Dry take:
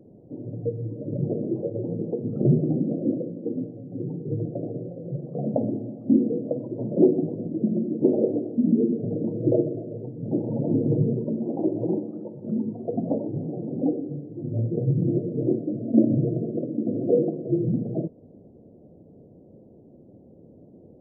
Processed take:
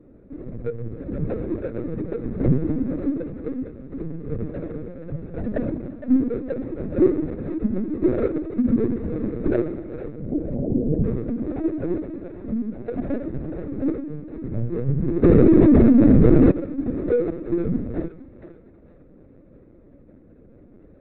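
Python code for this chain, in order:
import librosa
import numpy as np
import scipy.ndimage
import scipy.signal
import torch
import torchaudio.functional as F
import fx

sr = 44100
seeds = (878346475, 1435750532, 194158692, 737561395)

y = scipy.ndimage.median_filter(x, 41, mode='constant')
y = fx.steep_lowpass(y, sr, hz=820.0, slope=72, at=(10.0, 11.04))
y = fx.echo_thinned(y, sr, ms=466, feedback_pct=35, hz=580.0, wet_db=-10.0)
y = fx.lpc_vocoder(y, sr, seeds[0], excitation='pitch_kept', order=16)
y = fx.env_flatten(y, sr, amount_pct=100, at=(15.22, 16.5), fade=0.02)
y = y * 10.0 ** (1.0 / 20.0)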